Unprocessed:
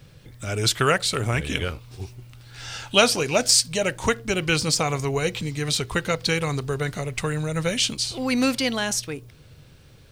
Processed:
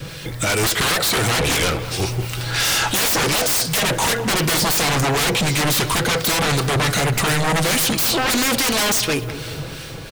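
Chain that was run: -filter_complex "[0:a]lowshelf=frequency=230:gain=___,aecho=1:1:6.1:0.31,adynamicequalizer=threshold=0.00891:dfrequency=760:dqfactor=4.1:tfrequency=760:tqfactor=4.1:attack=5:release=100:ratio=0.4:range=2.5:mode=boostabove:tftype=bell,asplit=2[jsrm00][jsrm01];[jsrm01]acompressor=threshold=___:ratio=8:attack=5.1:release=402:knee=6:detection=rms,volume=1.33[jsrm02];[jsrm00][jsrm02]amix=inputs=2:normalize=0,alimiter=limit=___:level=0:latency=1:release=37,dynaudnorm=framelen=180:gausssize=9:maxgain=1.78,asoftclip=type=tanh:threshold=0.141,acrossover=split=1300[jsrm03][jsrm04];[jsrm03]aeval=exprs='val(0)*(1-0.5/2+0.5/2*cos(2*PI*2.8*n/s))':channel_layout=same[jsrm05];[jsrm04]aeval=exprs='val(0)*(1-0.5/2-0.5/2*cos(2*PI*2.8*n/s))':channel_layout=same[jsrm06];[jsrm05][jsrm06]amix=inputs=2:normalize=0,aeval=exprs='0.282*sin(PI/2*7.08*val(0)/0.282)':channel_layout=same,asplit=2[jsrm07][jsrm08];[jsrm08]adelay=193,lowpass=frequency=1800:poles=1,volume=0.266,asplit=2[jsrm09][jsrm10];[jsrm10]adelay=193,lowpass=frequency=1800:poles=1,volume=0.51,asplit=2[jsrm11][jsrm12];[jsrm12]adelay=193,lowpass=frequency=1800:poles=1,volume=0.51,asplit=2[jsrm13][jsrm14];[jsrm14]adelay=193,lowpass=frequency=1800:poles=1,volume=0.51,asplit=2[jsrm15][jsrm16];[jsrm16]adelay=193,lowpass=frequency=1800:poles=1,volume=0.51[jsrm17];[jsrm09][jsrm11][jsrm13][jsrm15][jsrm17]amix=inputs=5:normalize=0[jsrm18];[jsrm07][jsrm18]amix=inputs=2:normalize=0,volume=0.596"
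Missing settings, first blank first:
-10, 0.0178, 0.398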